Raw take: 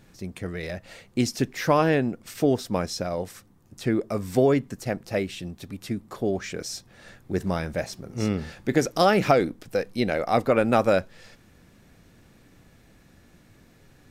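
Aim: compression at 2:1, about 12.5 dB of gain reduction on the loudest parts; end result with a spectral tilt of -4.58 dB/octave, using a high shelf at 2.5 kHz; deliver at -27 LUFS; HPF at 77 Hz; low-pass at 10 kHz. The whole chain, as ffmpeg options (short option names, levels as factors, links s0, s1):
-af "highpass=77,lowpass=10000,highshelf=f=2500:g=4.5,acompressor=threshold=0.0126:ratio=2,volume=2.82"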